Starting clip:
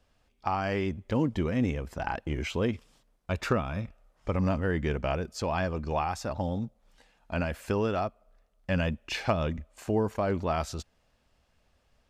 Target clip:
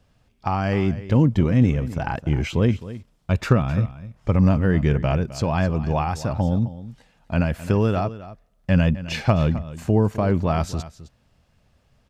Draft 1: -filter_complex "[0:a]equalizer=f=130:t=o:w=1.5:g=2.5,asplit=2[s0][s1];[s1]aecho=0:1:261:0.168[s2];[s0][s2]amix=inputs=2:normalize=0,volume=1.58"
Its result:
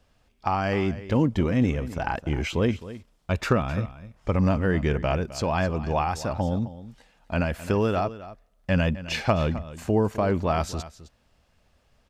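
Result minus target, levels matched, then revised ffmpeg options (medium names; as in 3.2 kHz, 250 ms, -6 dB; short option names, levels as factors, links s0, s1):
125 Hz band -2.5 dB
-filter_complex "[0:a]equalizer=f=130:t=o:w=1.5:g=11,asplit=2[s0][s1];[s1]aecho=0:1:261:0.168[s2];[s0][s2]amix=inputs=2:normalize=0,volume=1.58"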